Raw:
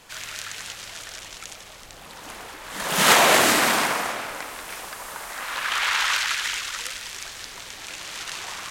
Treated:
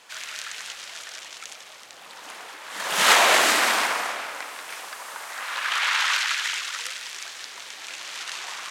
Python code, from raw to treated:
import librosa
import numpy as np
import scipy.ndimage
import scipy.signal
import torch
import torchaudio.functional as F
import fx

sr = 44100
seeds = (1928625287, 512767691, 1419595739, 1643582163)

y = fx.weighting(x, sr, curve='A')
y = F.gain(torch.from_numpy(y), -1.0).numpy()